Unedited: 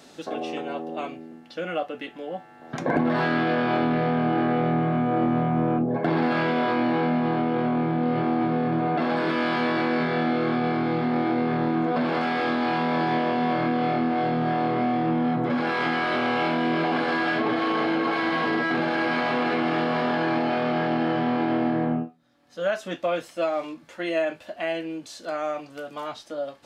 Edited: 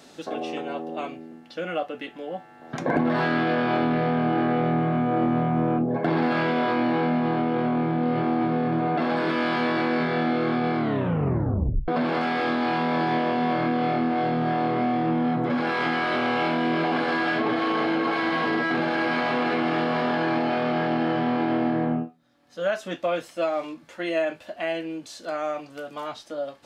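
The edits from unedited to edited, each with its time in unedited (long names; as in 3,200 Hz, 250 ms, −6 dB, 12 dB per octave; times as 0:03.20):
0:10.78: tape stop 1.10 s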